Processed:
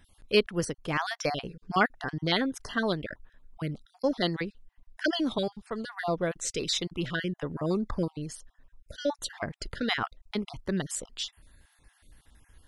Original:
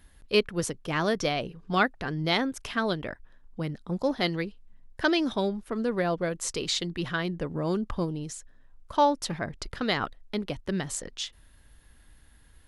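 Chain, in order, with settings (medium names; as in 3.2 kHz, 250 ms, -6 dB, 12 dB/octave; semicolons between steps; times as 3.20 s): random holes in the spectrogram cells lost 30%; 5.38–5.98 s: graphic EQ 125/250/4000 Hz +8/-9/+4 dB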